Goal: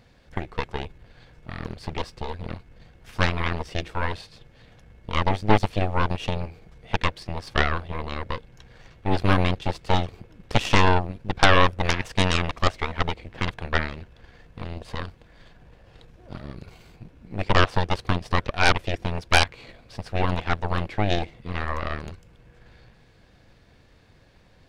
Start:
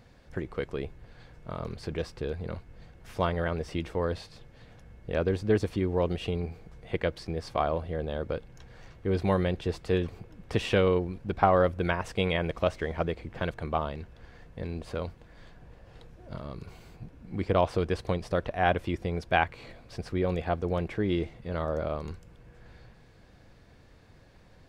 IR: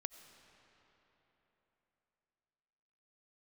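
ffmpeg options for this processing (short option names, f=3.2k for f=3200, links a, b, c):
-af "aeval=exprs='0.501*(cos(1*acos(clip(val(0)/0.501,-1,1)))-cos(1*PI/2))+0.224*(cos(8*acos(clip(val(0)/0.501,-1,1)))-cos(8*PI/2))':c=same,equalizer=f=3.2k:w=0.92:g=4"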